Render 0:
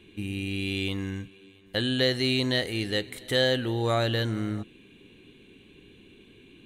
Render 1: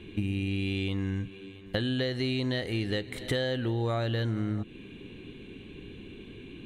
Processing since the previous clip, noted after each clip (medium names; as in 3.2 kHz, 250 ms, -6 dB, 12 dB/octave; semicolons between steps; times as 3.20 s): bass shelf 180 Hz +5.5 dB; compression 6:1, threshold -33 dBFS, peak gain reduction 14 dB; low-pass 3.3 kHz 6 dB/octave; trim +6.5 dB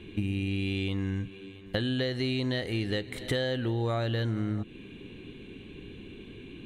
no audible change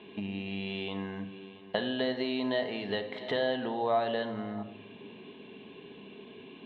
cabinet simulation 280–3700 Hz, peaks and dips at 330 Hz -6 dB, 680 Hz +9 dB, 970 Hz +9 dB, 1.4 kHz -5 dB, 2.3 kHz -5 dB; simulated room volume 2300 m³, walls furnished, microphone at 1.4 m